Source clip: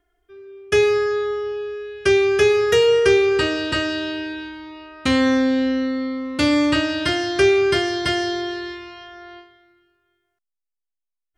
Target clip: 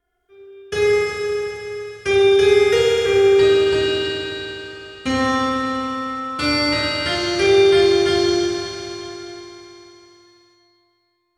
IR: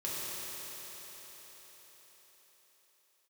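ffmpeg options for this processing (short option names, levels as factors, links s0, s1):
-filter_complex "[0:a]asettb=1/sr,asplit=3[s0][s1][s2];[s0]atrim=end=2.884[s3];[s1]atrim=start=2.88:end=3.36,asetpts=PTS-STARTPTS,afade=t=in:d=0.004:c=qsin,afade=t=out:st=0.476:d=0.004:c=qsin,lowpass=1800[s4];[s2]atrim=start=3.356[s5];[s3][s4]acrossfade=d=0.004:c1=hsin:c2=qsin[s6];[s6][s5]acrossfade=d=0.004:c1=qsin:c2=hsin[s7];[1:a]atrim=start_sample=2205,asetrate=57330,aresample=44100[s8];[s7][s8]afir=irnorm=-1:irlink=0"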